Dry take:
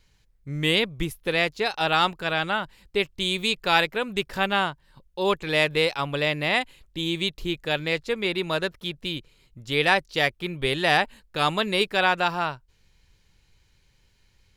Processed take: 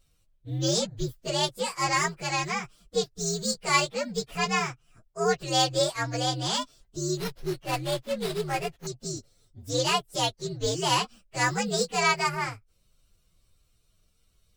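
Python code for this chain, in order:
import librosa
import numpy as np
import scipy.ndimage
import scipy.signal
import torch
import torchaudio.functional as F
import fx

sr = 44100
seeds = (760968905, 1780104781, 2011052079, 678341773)

y = fx.partial_stretch(x, sr, pct=125)
y = fx.running_max(y, sr, window=5, at=(7.17, 8.87))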